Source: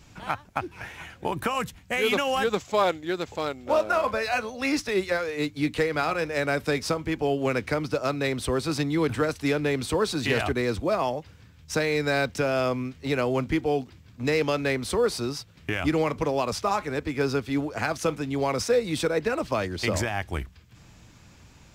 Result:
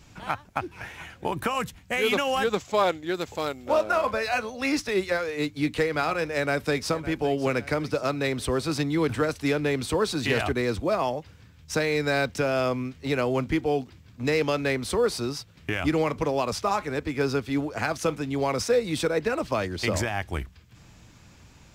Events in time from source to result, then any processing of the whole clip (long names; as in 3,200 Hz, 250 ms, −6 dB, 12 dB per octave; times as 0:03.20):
0:03.14–0:03.69: parametric band 14,000 Hz +8 dB 1.2 octaves
0:06.37–0:06.94: delay throw 560 ms, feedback 50%, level −15.5 dB